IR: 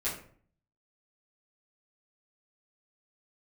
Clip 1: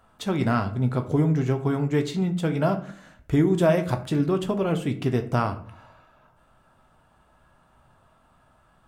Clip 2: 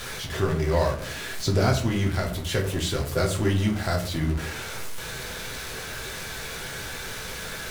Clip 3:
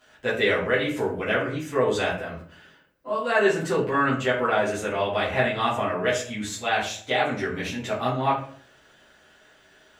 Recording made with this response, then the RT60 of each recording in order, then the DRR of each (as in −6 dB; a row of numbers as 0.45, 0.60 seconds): 3; 0.50, 0.50, 0.50 seconds; 5.5, 0.0, −10.0 decibels